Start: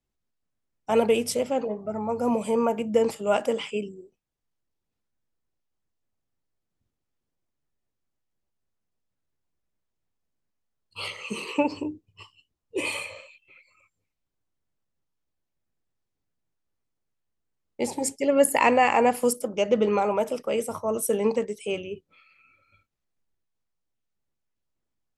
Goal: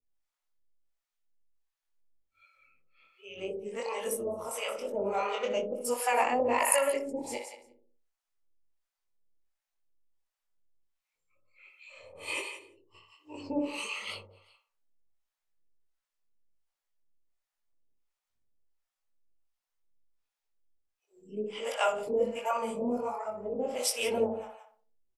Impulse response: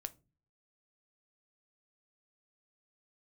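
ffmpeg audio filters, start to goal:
-filter_complex "[0:a]areverse,asplit=2[link_01][link_02];[link_02]adelay=61,lowpass=frequency=1600:poles=1,volume=-5dB,asplit=2[link_03][link_04];[link_04]adelay=61,lowpass=frequency=1600:poles=1,volume=0.47,asplit=2[link_05][link_06];[link_06]adelay=61,lowpass=frequency=1600:poles=1,volume=0.47,asplit=2[link_07][link_08];[link_08]adelay=61,lowpass=frequency=1600:poles=1,volume=0.47,asplit=2[link_09][link_10];[link_10]adelay=61,lowpass=frequency=1600:poles=1,volume=0.47,asplit=2[link_11][link_12];[link_12]adelay=61,lowpass=frequency=1600:poles=1,volume=0.47[link_13];[link_03][link_05][link_07][link_09][link_11][link_13]amix=inputs=6:normalize=0[link_14];[link_01][link_14]amix=inputs=2:normalize=0,flanger=delay=20:depth=5:speed=1.2,asplit=2[link_15][link_16];[link_16]aecho=0:1:174|348:0.224|0.0403[link_17];[link_15][link_17]amix=inputs=2:normalize=0,acrossover=split=590[link_18][link_19];[link_18]aeval=exprs='val(0)*(1-1/2+1/2*cos(2*PI*1.4*n/s))':channel_layout=same[link_20];[link_19]aeval=exprs='val(0)*(1-1/2-1/2*cos(2*PI*1.4*n/s))':channel_layout=same[link_21];[link_20][link_21]amix=inputs=2:normalize=0,equalizer=frequency=140:width=0.41:gain=-11.5,volume=4.5dB"

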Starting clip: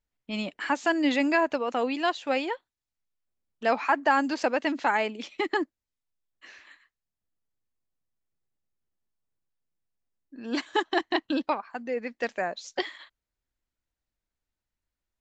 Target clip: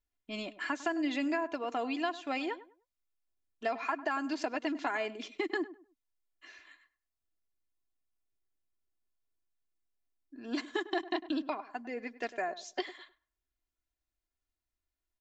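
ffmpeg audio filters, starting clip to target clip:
ffmpeg -i in.wav -filter_complex "[0:a]aecho=1:1:2.9:0.63,acompressor=threshold=-23dB:ratio=6,asplit=2[link_01][link_02];[link_02]adelay=101,lowpass=frequency=1500:poles=1,volume=-15dB,asplit=2[link_03][link_04];[link_04]adelay=101,lowpass=frequency=1500:poles=1,volume=0.27,asplit=2[link_05][link_06];[link_06]adelay=101,lowpass=frequency=1500:poles=1,volume=0.27[link_07];[link_01][link_03][link_05][link_07]amix=inputs=4:normalize=0,volume=-6dB" out.wav

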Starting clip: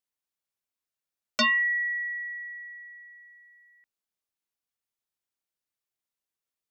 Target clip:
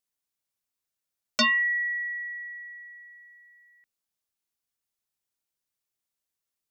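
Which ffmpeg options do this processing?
ffmpeg -i in.wav -af "bass=frequency=250:gain=3,treble=frequency=4000:gain=4" out.wav

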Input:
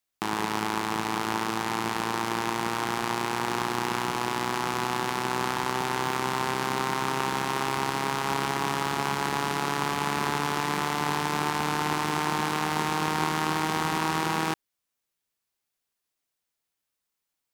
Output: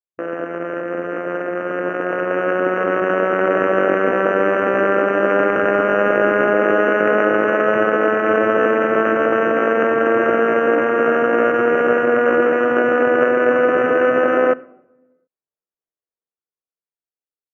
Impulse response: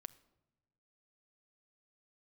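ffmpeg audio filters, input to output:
-filter_complex "[0:a]lowpass=frequency=1100:width=0.5412,lowpass=frequency=1100:width=1.3066,aemphasis=mode=reproduction:type=cd,afwtdn=0.0178,equalizer=frequency=280:width=1.2:gain=10.5,dynaudnorm=framelen=510:gausssize=9:maxgain=15dB,asetrate=70004,aresample=44100,atempo=0.629961,asplit=2[link_01][link_02];[1:a]atrim=start_sample=2205,highshelf=frequency=11000:gain=6.5[link_03];[link_02][link_03]afir=irnorm=-1:irlink=0,volume=12dB[link_04];[link_01][link_04]amix=inputs=2:normalize=0,volume=-10dB"

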